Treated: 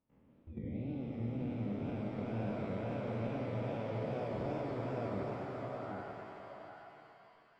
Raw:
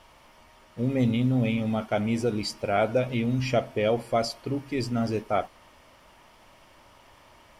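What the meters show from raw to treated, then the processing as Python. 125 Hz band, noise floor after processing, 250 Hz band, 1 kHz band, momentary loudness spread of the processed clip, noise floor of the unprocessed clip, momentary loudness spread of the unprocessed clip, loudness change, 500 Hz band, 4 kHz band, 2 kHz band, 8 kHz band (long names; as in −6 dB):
−10.0 dB, −66 dBFS, −12.0 dB, −12.0 dB, 12 LU, −56 dBFS, 6 LU, −13.0 dB, −12.0 dB, −21.5 dB, −14.0 dB, below −25 dB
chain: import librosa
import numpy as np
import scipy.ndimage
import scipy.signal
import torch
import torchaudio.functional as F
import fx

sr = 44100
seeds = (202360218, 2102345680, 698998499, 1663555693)

y = fx.spec_blur(x, sr, span_ms=1080.0)
y = scipy.signal.sosfilt(scipy.signal.butter(2, 2100.0, 'lowpass', fs=sr, output='sos'), y)
y = fx.noise_reduce_blind(y, sr, reduce_db=28)
y = fx.level_steps(y, sr, step_db=19)
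y = fx.wow_flutter(y, sr, seeds[0], rate_hz=2.1, depth_cents=140.0)
y = fx.over_compress(y, sr, threshold_db=-44.0, ratio=-1.0)
y = y + 10.0 ** (-7.0 / 20.0) * np.pad(y, (int(776 * sr / 1000.0), 0))[:len(y)]
y = fx.rev_shimmer(y, sr, seeds[1], rt60_s=2.9, semitones=7, shimmer_db=-8, drr_db=1.5)
y = y * librosa.db_to_amplitude(2.5)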